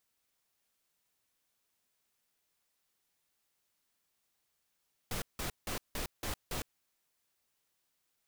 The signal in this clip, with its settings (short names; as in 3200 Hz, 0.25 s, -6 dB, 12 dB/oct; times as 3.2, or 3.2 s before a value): noise bursts pink, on 0.11 s, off 0.17 s, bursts 6, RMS -37 dBFS